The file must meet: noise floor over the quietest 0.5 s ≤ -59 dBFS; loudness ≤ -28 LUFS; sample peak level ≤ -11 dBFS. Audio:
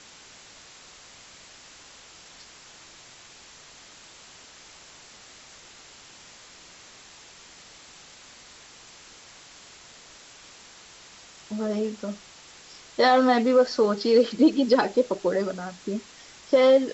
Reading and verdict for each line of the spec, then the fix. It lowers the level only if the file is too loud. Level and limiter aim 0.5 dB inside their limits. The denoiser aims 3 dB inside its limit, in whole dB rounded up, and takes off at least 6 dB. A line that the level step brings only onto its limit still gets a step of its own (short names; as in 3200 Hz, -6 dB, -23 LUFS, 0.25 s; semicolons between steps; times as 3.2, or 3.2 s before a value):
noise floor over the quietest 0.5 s -49 dBFS: fail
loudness -23.0 LUFS: fail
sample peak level -9.0 dBFS: fail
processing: denoiser 8 dB, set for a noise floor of -49 dBFS; gain -5.5 dB